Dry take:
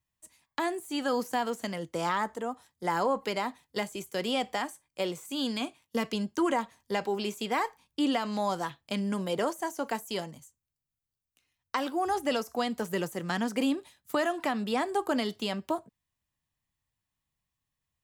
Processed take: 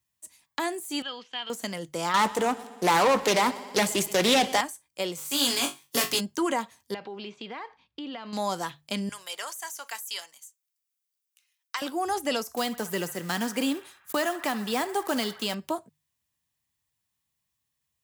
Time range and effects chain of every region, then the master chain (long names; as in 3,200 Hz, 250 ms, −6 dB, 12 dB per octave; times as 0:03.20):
0:01.02–0:01.50: transistor ladder low-pass 3,400 Hz, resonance 70% + tilt shelving filter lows −6 dB, about 930 Hz + notch filter 620 Hz, Q 16
0:02.14–0:04.61: leveller curve on the samples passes 3 + echo machine with several playback heads 61 ms, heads first and second, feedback 68%, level −22 dB + highs frequency-modulated by the lows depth 0.27 ms
0:05.17–0:06.19: compressing power law on the bin magnitudes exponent 0.61 + comb filter 7.2 ms, depth 62% + flutter between parallel walls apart 3.6 metres, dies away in 0.22 s
0:06.94–0:08.33: low-pass filter 3,900 Hz 24 dB per octave + downward compressor 3 to 1, threshold −38 dBFS
0:09.09–0:11.82: high-pass filter 1,300 Hz + notch filter 4,200 Hz, Q 28
0:12.57–0:15.55: one scale factor per block 5 bits + feedback echo with a band-pass in the loop 65 ms, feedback 80%, band-pass 1,400 Hz, level −14 dB
whole clip: high-pass filter 57 Hz; high-shelf EQ 3,100 Hz +8 dB; mains-hum notches 50/100/150 Hz